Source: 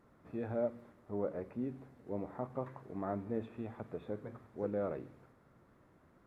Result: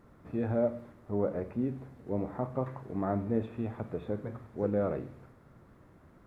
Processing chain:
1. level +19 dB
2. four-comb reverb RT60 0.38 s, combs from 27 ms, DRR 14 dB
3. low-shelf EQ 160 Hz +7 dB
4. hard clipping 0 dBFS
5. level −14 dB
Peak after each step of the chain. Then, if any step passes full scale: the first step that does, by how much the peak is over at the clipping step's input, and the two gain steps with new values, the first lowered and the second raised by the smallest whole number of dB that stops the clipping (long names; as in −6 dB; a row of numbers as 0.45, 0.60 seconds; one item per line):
−4.0, −4.0, −2.5, −2.5, −16.5 dBFS
no step passes full scale